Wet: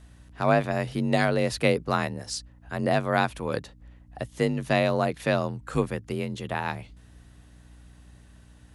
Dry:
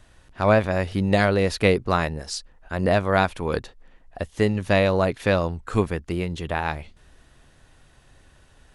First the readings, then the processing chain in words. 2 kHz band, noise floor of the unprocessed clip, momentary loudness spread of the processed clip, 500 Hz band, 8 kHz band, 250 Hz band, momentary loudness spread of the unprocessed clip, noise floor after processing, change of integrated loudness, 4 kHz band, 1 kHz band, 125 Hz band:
-3.5 dB, -56 dBFS, 11 LU, -4.0 dB, -1.0 dB, -3.5 dB, 12 LU, -53 dBFS, -4.0 dB, -3.0 dB, -2.5 dB, -4.0 dB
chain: frequency shift +38 Hz; hum 60 Hz, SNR 24 dB; treble shelf 8.6 kHz +7 dB; trim -4 dB

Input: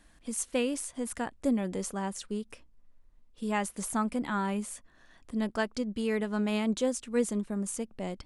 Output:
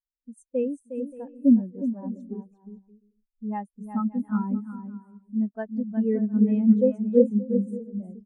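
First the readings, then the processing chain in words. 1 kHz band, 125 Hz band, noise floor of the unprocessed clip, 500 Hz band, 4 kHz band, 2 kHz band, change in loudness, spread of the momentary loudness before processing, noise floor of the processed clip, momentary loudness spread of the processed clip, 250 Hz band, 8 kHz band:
-3.5 dB, no reading, -61 dBFS, +6.0 dB, under -25 dB, -12.5 dB, +7.0 dB, 8 LU, under -85 dBFS, 16 LU, +8.5 dB, under -25 dB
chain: bouncing-ball echo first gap 360 ms, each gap 0.6×, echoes 5; spectral contrast expander 2.5:1; trim +8.5 dB

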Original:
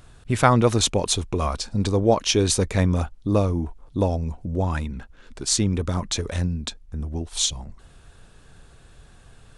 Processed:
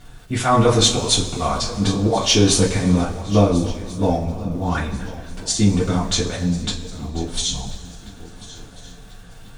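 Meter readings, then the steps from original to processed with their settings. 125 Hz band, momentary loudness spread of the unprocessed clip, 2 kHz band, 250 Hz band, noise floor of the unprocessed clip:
+2.5 dB, 12 LU, +3.0 dB, +5.0 dB, -50 dBFS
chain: low-pass 9.4 kHz 12 dB/octave; slow attack 107 ms; in parallel at -11.5 dB: saturation -14.5 dBFS, distortion -15 dB; on the sum: crackle 97 per s -40 dBFS; on a send: shuffle delay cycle 1388 ms, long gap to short 3:1, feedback 33%, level -18 dB; on the sum: two-slope reverb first 0.24 s, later 1.8 s, from -18 dB, DRR -7.5 dB; trim -4 dB

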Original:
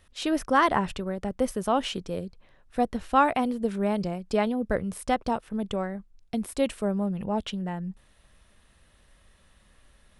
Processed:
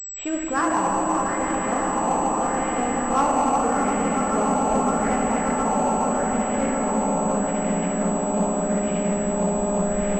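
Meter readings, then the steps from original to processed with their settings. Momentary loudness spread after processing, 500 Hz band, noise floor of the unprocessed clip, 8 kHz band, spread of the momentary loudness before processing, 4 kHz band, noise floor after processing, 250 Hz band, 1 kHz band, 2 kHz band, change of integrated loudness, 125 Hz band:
3 LU, +6.0 dB, -61 dBFS, +17.5 dB, 12 LU, -3.0 dB, -26 dBFS, +6.0 dB, +7.0 dB, +4.0 dB, +5.5 dB, +6.0 dB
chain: backward echo that repeats 175 ms, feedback 83%, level -5 dB; recorder AGC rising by 8.9 dB/s; on a send: echo with a slow build-up 143 ms, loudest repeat 8, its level -12 dB; on the sum: LFO low-pass sine 0.81 Hz 850–2600 Hz; distance through air 130 m; in parallel at -12 dB: sample-and-hold 24×; on the sum: simulated room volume 180 m³, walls hard, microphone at 0.44 m; saturation -4.5 dBFS, distortion -23 dB; class-D stage that switches slowly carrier 7.8 kHz; trim -6.5 dB

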